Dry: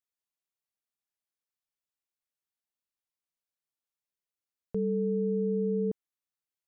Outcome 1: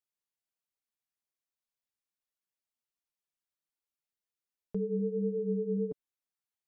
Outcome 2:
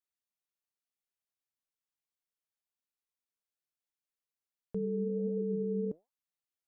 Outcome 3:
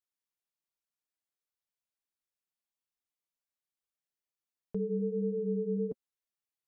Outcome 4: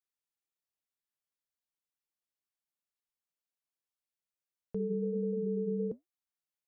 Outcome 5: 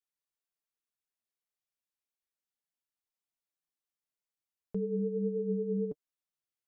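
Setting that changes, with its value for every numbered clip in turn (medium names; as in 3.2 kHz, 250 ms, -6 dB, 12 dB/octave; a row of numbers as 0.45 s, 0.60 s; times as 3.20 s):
flange, regen: +6%, +85%, -21%, -75%, +29%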